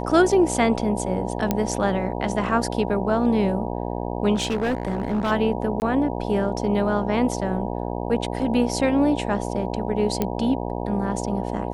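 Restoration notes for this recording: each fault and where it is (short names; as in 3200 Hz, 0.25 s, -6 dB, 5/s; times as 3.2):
buzz 60 Hz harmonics 16 -28 dBFS
1.51 pop -7 dBFS
4.34–5.32 clipped -19 dBFS
5.8–5.82 gap 19 ms
10.22 pop -9 dBFS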